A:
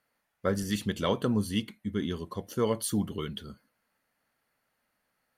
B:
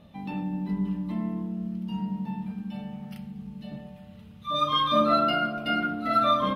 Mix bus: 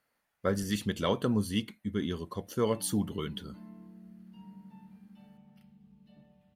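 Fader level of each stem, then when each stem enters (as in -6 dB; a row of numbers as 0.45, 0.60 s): -1.0, -19.0 dB; 0.00, 2.45 s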